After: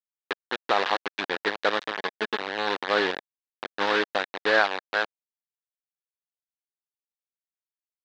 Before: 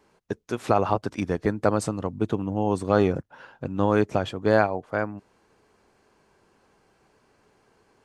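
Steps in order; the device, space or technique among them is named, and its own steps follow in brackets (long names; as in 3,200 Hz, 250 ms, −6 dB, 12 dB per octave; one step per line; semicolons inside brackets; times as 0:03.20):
hand-held game console (bit reduction 4 bits; loudspeaker in its box 490–4,300 Hz, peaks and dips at 640 Hz −4 dB, 1,700 Hz +8 dB, 3,800 Hz +6 dB)
0:01.95–0:02.38: comb filter 4.7 ms, depth 49%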